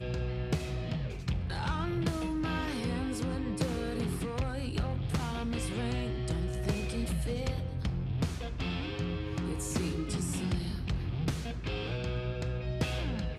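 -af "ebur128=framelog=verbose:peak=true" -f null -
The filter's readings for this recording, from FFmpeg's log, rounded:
Integrated loudness:
  I:         -34.2 LUFS
  Threshold: -44.2 LUFS
Loudness range:
  LRA:         0.9 LU
  Threshold: -54.1 LUFS
  LRA low:   -34.5 LUFS
  LRA high:  -33.6 LUFS
True peak:
  Peak:      -19.4 dBFS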